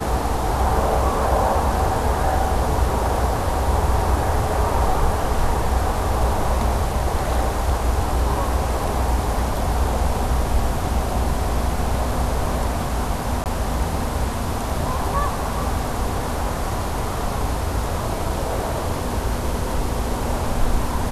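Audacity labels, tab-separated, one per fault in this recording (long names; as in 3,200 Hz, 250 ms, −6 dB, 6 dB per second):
13.440000	13.460000	drop-out 18 ms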